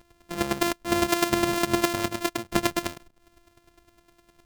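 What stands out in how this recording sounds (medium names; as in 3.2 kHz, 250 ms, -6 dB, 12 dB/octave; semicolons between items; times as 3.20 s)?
a buzz of ramps at a fixed pitch in blocks of 128 samples; chopped level 9.8 Hz, depth 65%, duty 15%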